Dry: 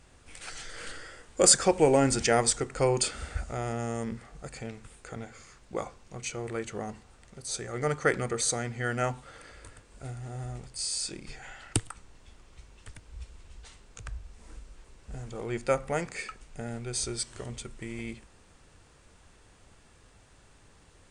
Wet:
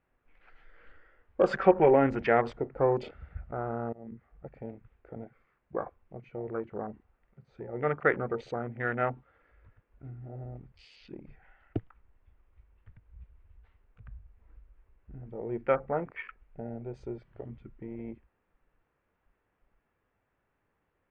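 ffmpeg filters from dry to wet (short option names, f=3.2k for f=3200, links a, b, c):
-filter_complex "[0:a]asettb=1/sr,asplit=3[a][b][c];[a]atrim=end=1.534[d];[b]atrim=start=1.53:end=1.94,asetpts=PTS-STARTPTS,afade=t=in:d=0.004:c=qsin,afade=t=out:st=0.406:d=0.004:c=qsin,aecho=1:1:5.2:0.64,atrim=end_sample=18081[e];[c]atrim=start=1.936[f];[d][e]acrossfade=d=0.004:c1=hsin:c2=qsin[g];[g][f]acrossfade=d=0.004:c1=qsin:c2=hsin,asplit=2[h][i];[h]atrim=end=3.93,asetpts=PTS-STARTPTS,afade=t=out:st=3.926:d=0.004:c=hsin:silence=0.0891251[j];[i]atrim=start=3.93,asetpts=PTS-STARTPTS,afade=t=in:d=0.4:silence=0.0891251[k];[j][k]concat=n=2:v=0:a=1,afwtdn=0.0158,lowpass=f=2.3k:w=0.5412,lowpass=f=2.3k:w=1.3066,lowshelf=f=130:g=-10,volume=1dB"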